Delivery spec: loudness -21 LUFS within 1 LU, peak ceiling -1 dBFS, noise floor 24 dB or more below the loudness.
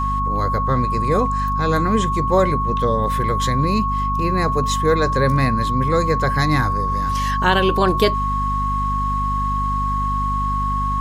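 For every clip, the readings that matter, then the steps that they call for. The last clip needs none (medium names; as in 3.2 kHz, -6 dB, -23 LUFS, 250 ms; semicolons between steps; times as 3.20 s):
hum 50 Hz; highest harmonic 250 Hz; hum level -21 dBFS; steady tone 1.1 kHz; tone level -20 dBFS; loudness -19.0 LUFS; peak level -3.0 dBFS; loudness target -21.0 LUFS
-> de-hum 50 Hz, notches 5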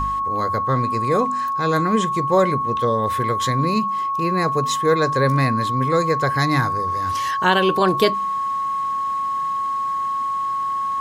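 hum not found; steady tone 1.1 kHz; tone level -20 dBFS
-> band-stop 1.1 kHz, Q 30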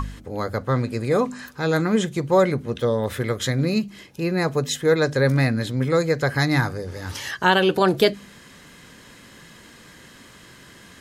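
steady tone not found; loudness -22.0 LUFS; peak level -3.5 dBFS; loudness target -21.0 LUFS
-> trim +1 dB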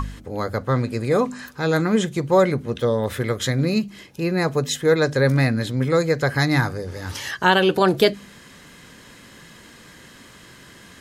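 loudness -21.0 LUFS; peak level -2.5 dBFS; noise floor -46 dBFS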